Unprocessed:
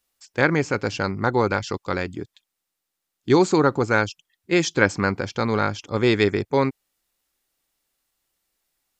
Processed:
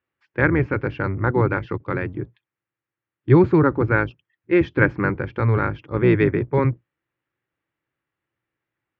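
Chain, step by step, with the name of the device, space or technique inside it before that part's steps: sub-octave bass pedal (octaver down 1 oct, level 0 dB; speaker cabinet 89–2400 Hz, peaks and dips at 120 Hz +8 dB, 220 Hz -4 dB, 330 Hz +6 dB, 720 Hz -6 dB, 1700 Hz +3 dB); gain -1 dB

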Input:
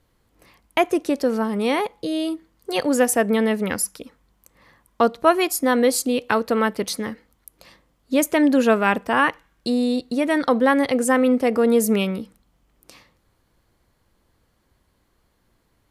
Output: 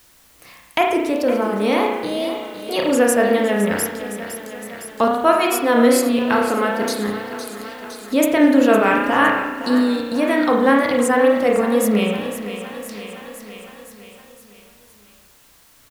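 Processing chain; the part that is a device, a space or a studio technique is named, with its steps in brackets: 6.43–7.08 HPF 150 Hz 12 dB/oct; notch 380 Hz, Q 12; feedback echo 0.512 s, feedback 54%, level -13 dB; spring tank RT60 1 s, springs 33 ms, chirp 25 ms, DRR -0.5 dB; noise-reduction cassette on a plain deck (mismatched tape noise reduction encoder only; wow and flutter; white noise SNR 33 dB)

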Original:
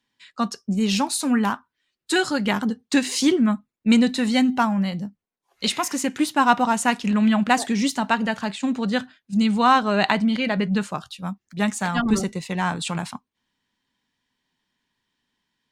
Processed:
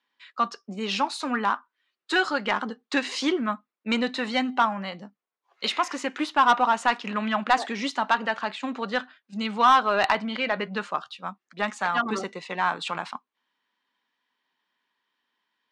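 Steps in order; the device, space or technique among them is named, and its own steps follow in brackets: intercom (BPF 420–3800 Hz; bell 1200 Hz +5 dB 0.54 oct; soft clip -10.5 dBFS, distortion -13 dB)

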